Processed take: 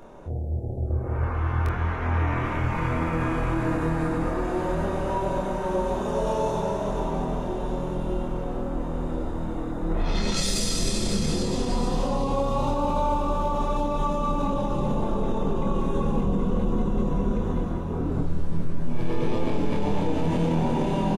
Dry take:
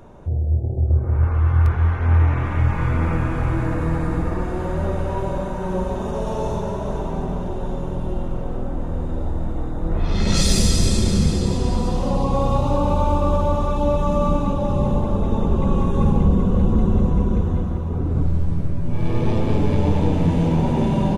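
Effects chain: bell 82 Hz -13 dB 1.7 oct; limiter -17 dBFS, peak gain reduction 10 dB; doubler 25 ms -5 dB

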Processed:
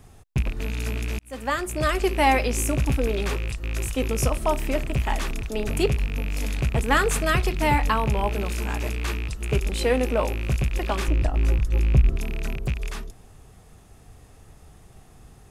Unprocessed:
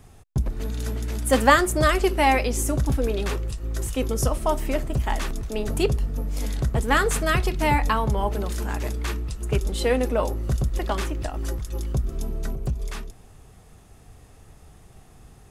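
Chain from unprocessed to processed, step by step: rattling part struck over -26 dBFS, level -23 dBFS; 1.19–2.23 fade in linear; 11.08–12.16 tilt -2 dB/oct

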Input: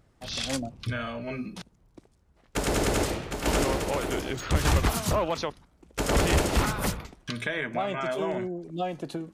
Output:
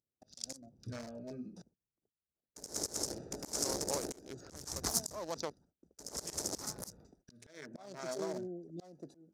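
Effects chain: Wiener smoothing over 41 samples; HPF 260 Hz 6 dB/oct; gate -59 dBFS, range -22 dB; resonant high shelf 4000 Hz +12.5 dB, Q 3; auto swell 0.349 s; gain -5.5 dB

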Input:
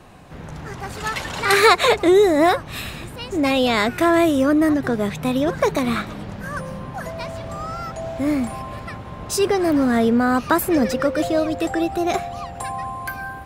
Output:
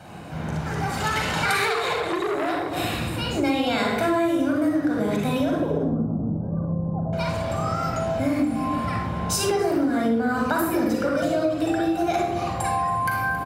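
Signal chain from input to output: 5.55–7.13 Gaussian blur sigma 13 samples; echo 0.273 s -16 dB; reverb RT60 0.65 s, pre-delay 39 ms, DRR -1 dB; compressor 6:1, threshold -20 dBFS, peak gain reduction 15.5 dB; HPF 90 Hz 12 dB/oct; 1.65–2.77 core saturation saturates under 1400 Hz

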